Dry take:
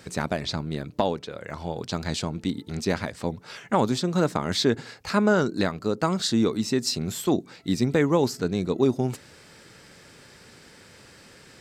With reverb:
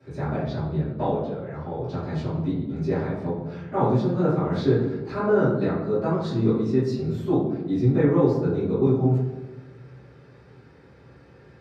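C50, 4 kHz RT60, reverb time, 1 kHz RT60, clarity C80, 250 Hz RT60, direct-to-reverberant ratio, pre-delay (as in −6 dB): 1.0 dB, 0.80 s, 1.1 s, 1.0 s, 4.0 dB, 1.5 s, −18.0 dB, 3 ms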